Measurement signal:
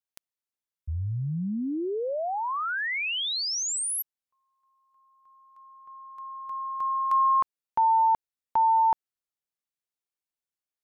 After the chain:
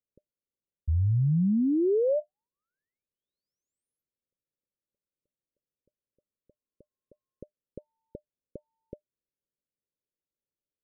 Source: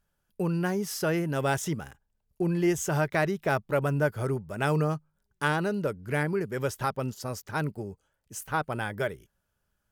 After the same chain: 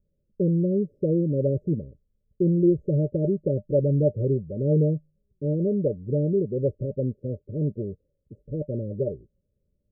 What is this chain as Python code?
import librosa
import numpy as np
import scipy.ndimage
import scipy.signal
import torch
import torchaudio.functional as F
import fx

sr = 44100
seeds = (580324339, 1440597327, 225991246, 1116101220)

y = scipy.signal.sosfilt(scipy.signal.ellip(8, 1.0, 70, 600.0, 'lowpass', fs=sr, output='sos'), x)
y = y * librosa.db_to_amplitude(6.0)